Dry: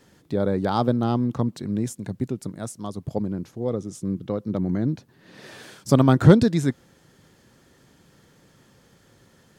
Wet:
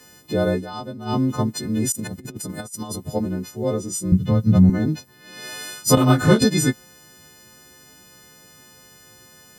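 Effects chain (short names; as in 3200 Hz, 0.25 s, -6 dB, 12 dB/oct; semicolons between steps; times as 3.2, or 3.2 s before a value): frequency quantiser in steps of 3 st; 0.53–1.17 dip -15 dB, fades 0.12 s; 1.92–2.96 negative-ratio compressor -34 dBFS, ratio -0.5; 4.12–4.7 resonant low shelf 220 Hz +13 dB, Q 1.5; 5.95–6.42 detuned doubles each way 42 cents; gain +3.5 dB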